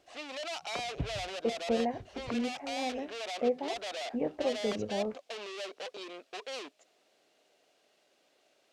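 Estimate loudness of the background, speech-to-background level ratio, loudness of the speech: −40.0 LKFS, 4.0 dB, −36.0 LKFS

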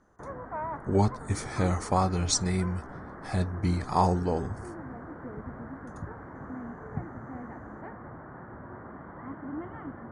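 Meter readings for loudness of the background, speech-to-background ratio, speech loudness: −41.5 LKFS, 13.0 dB, −28.5 LKFS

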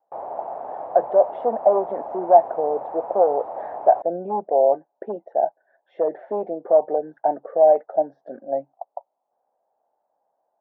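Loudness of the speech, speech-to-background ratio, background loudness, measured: −21.5 LKFS, 11.5 dB, −33.0 LKFS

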